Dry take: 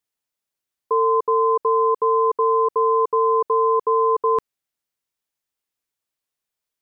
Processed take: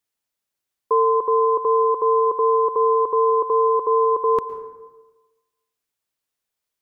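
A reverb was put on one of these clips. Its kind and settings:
dense smooth reverb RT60 1.2 s, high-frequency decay 0.45×, pre-delay 100 ms, DRR 11.5 dB
level +1.5 dB

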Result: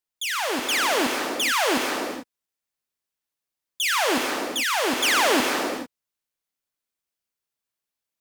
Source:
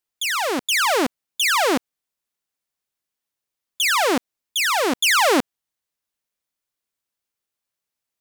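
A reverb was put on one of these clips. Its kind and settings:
reverb whose tail is shaped and stops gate 470 ms flat, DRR 2 dB
level −4.5 dB

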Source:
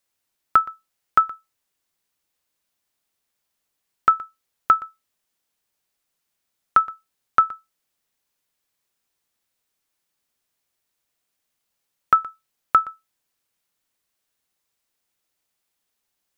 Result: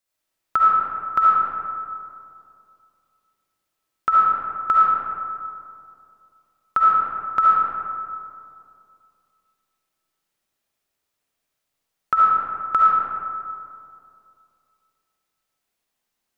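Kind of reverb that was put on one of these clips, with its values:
comb and all-pass reverb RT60 2.5 s, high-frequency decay 0.4×, pre-delay 30 ms, DRR −6 dB
level −5.5 dB

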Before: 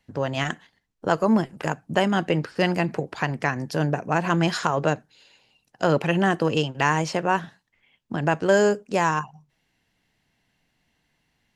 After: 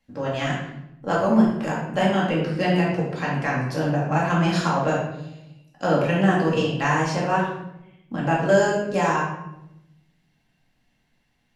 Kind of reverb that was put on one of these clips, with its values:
rectangular room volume 280 cubic metres, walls mixed, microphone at 2.2 metres
level −6.5 dB

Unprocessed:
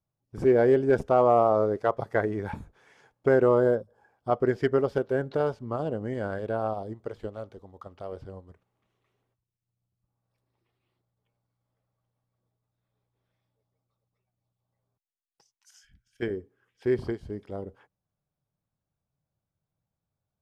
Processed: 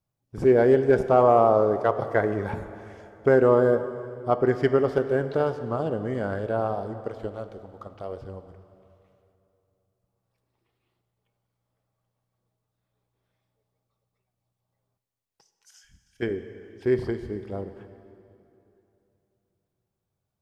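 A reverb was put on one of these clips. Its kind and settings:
dense smooth reverb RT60 2.9 s, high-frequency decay 0.85×, DRR 9.5 dB
level +2.5 dB

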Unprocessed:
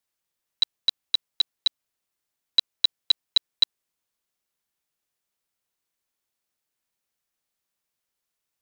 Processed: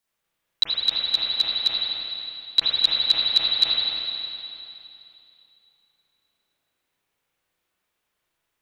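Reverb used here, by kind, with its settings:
spring reverb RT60 2.8 s, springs 32/38/58 ms, chirp 55 ms, DRR −8.5 dB
level +1.5 dB

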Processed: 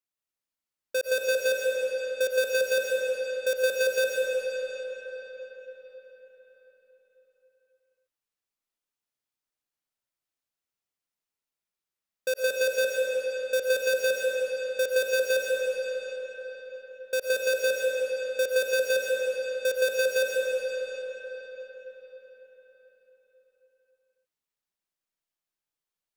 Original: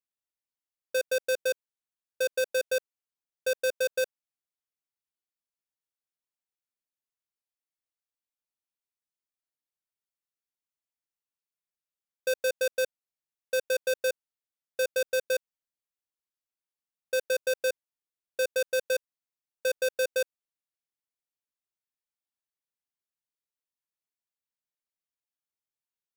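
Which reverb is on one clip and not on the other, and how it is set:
comb and all-pass reverb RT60 4.9 s, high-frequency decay 0.75×, pre-delay 75 ms, DRR −2.5 dB

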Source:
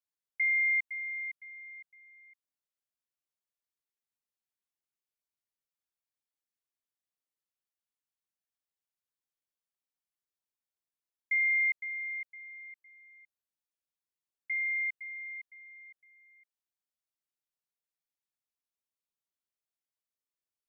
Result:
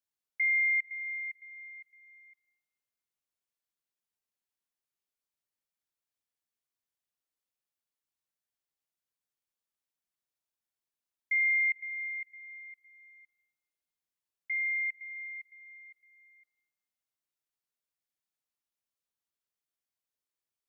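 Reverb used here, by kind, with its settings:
dense smooth reverb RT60 1.2 s, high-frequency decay 0.95×, DRR 17.5 dB

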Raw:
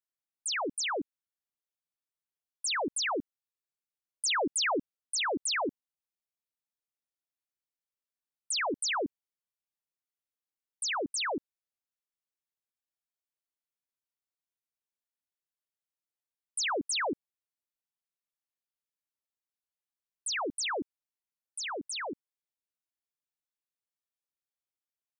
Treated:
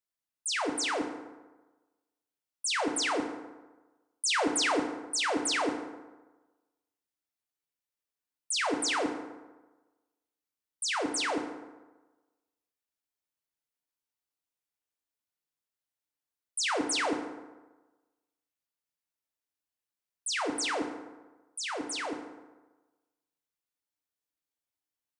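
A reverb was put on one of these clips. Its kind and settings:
feedback delay network reverb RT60 1.2 s, low-frequency decay 0.95×, high-frequency decay 0.55×, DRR 3.5 dB

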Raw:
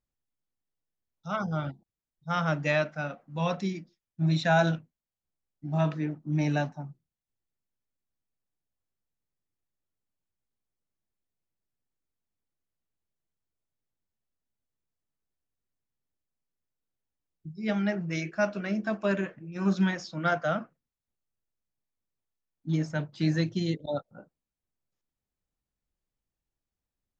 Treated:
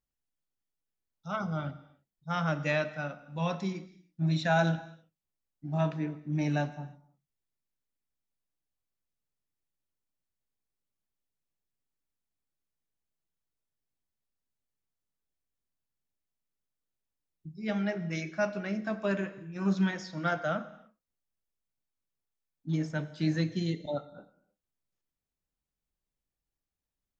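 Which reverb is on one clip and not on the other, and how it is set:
reverb whose tail is shaped and stops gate 350 ms falling, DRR 12 dB
level −3 dB

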